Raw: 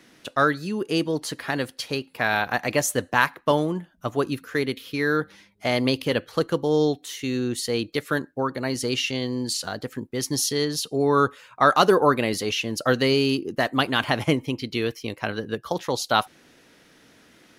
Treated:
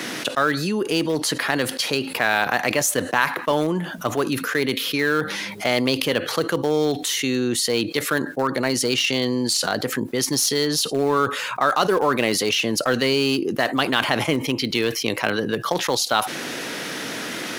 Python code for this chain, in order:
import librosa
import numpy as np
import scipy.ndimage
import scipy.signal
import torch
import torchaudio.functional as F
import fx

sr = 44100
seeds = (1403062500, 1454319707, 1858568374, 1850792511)

p1 = scipy.signal.sosfilt(scipy.signal.butter(4, 110.0, 'highpass', fs=sr, output='sos'), x)
p2 = fx.low_shelf(p1, sr, hz=240.0, db=-7.0)
p3 = np.where(np.abs(p2) >= 10.0 ** (-19.0 / 20.0), p2, 0.0)
p4 = p2 + (p3 * librosa.db_to_amplitude(-12.0))
p5 = fx.env_flatten(p4, sr, amount_pct=70)
y = p5 * librosa.db_to_amplitude(-4.5)